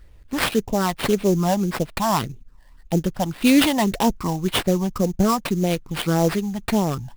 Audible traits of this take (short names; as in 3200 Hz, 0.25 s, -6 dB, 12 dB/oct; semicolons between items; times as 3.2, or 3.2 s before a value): phasing stages 12, 1.8 Hz, lowest notch 410–1400 Hz; aliases and images of a low sample rate 6500 Hz, jitter 20%